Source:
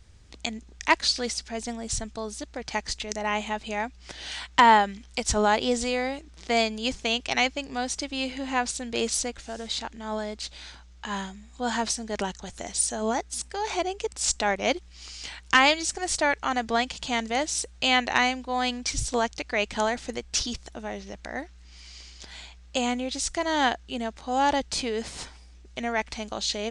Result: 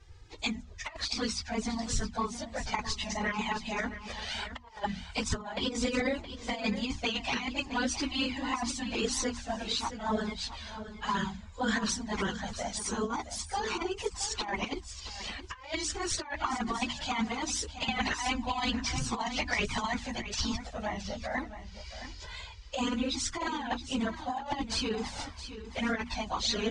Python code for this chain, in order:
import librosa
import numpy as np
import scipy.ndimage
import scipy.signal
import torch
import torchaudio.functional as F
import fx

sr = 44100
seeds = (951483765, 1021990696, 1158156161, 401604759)

y = fx.phase_scramble(x, sr, seeds[0], window_ms=50)
y = fx.peak_eq(y, sr, hz=1000.0, db=5.0, octaves=0.49)
y = fx.hum_notches(y, sr, base_hz=60, count=5)
y = fx.over_compress(y, sr, threshold_db=-27.0, ratio=-0.5)
y = fx.env_flanger(y, sr, rest_ms=2.6, full_db=-19.0)
y = fx.air_absorb(y, sr, metres=65.0)
y = y + 10.0 ** (-12.0 / 20.0) * np.pad(y, (int(669 * sr / 1000.0), 0))[:len(y)]
y = fx.band_squash(y, sr, depth_pct=100, at=(17.88, 19.94))